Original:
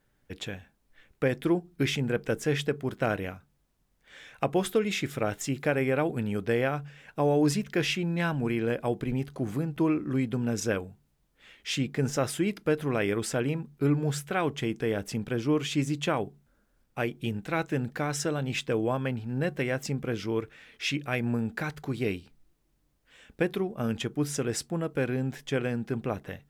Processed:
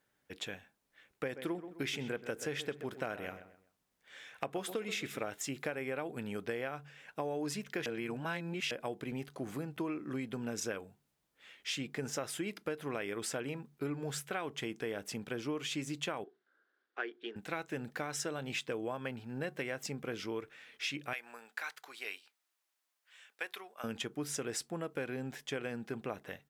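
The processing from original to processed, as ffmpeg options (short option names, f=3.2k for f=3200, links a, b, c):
-filter_complex "[0:a]asplit=3[a][b][c];[a]afade=t=out:st=1.35:d=0.02[d];[b]asplit=2[e][f];[f]adelay=129,lowpass=f=2.4k:p=1,volume=-13.5dB,asplit=2[g][h];[h]adelay=129,lowpass=f=2.4k:p=1,volume=0.36,asplit=2[i][j];[j]adelay=129,lowpass=f=2.4k:p=1,volume=0.36[k];[e][g][i][k]amix=inputs=4:normalize=0,afade=t=in:st=1.35:d=0.02,afade=t=out:st=5.25:d=0.02[l];[c]afade=t=in:st=5.25:d=0.02[m];[d][l][m]amix=inputs=3:normalize=0,asettb=1/sr,asplit=3[n][o][p];[n]atrim=end=16.244[q];[o]atrim=start=16.24:end=17.36,asetpts=PTS-STARTPTS,afade=t=in:d=0.004:c=qsin,afade=t=out:st=1.116:d=0.004:c=qsin,highpass=f=340:w=0.5412,highpass=f=340:w=1.3066,equalizer=f=370:t=q:w=4:g=5,equalizer=f=580:t=q:w=4:g=-8,equalizer=f=890:t=q:w=4:g=-7,equalizer=f=1.6k:t=q:w=4:g=8,equalizer=f=2.5k:t=q:w=4:g=-8,lowpass=f=4.1k:w=0.5412,lowpass=f=4.1k:w=1.3066[r];[p]atrim=start=17.356[s];[q][r]acrossfade=d=0.004:c1=hsin:c2=qsin[t];[t][s]acrossfade=d=0.004:c1=qsin:c2=hsin,asettb=1/sr,asplit=3[u][v][w];[u]atrim=end=21.134[x];[v]atrim=start=21.13:end=23.84,asetpts=PTS-STARTPTS,afade=t=in:d=0.004:c=qsin,afade=t=out:st=2.706:d=0.004:c=qsin,highpass=1k[y];[w]atrim=start=23.836[z];[x][y]acrossfade=d=0.004:c1=hsin:c2=qsin[aa];[aa][z]acrossfade=d=0.004:c1=qsin:c2=hsin,asplit=3[ab][ac][ad];[ab]atrim=end=7.862[ae];[ac]atrim=start=7.858:end=8.712,asetpts=PTS-STARTPTS,areverse[af];[ad]atrim=start=8.708[ag];[ae][af]acrossfade=d=0.004:c1=hsin:c2=hsin[ah];[ah][ag]acrossfade=d=0.004:c1=hsin:c2=hsin,highpass=f=180:p=1,lowshelf=f=380:g=-6,acompressor=threshold=-31dB:ratio=6,volume=-2.5dB"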